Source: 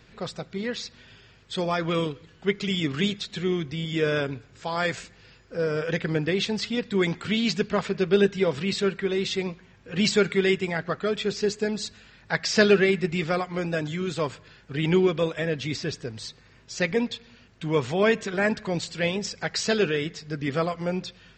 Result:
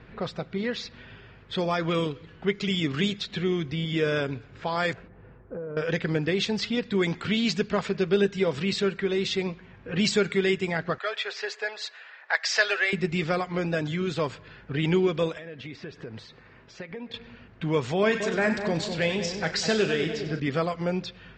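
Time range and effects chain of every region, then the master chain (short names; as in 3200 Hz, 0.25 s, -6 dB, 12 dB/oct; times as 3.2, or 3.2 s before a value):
4.93–5.77 LPF 1000 Hz + compressor 10:1, threshold -36 dBFS
10.98–12.93 HPF 600 Hz 24 dB/oct + bell 1800 Hz +5 dB 0.49 oct
15.37–17.14 low shelf 170 Hz -8 dB + compressor 12:1, threshold -39 dBFS
18–20.4 doubler 37 ms -11 dB + split-band echo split 1100 Hz, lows 0.2 s, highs 95 ms, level -9.5 dB
whole clip: low-pass opened by the level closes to 2000 Hz, open at -19 dBFS; compressor 1.5:1, threshold -40 dBFS; gain +6 dB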